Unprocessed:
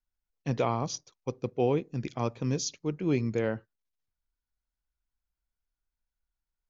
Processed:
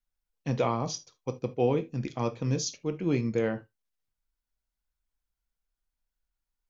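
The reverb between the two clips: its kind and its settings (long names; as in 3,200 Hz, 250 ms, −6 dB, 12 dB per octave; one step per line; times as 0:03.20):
reverb whose tail is shaped and stops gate 100 ms falling, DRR 8 dB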